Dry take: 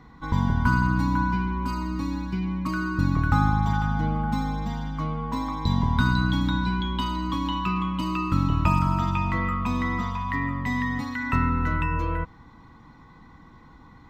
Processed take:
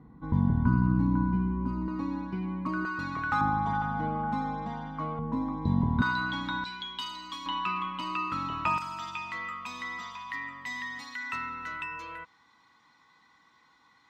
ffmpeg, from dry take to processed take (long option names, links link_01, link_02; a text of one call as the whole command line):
ffmpeg -i in.wav -af "asetnsamples=nb_out_samples=441:pad=0,asendcmd='1.88 bandpass f 570;2.85 bandpass f 1700;3.41 bandpass f 710;5.19 bandpass f 270;6.02 bandpass f 1500;6.64 bandpass f 5100;7.46 bandpass f 1900;8.78 bandpass f 5000',bandpass=frequency=200:width_type=q:width=0.6:csg=0" out.wav